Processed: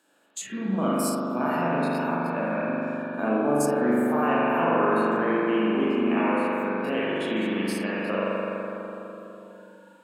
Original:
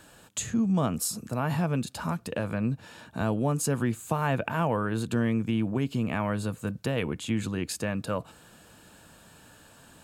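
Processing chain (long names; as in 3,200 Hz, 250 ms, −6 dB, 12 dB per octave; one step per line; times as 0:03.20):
spectrum averaged block by block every 50 ms
high-pass filter 230 Hz 24 dB per octave
spring reverb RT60 3.9 s, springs 41 ms, chirp 50 ms, DRR −7.5 dB
noise reduction from a noise print of the clip's start 13 dB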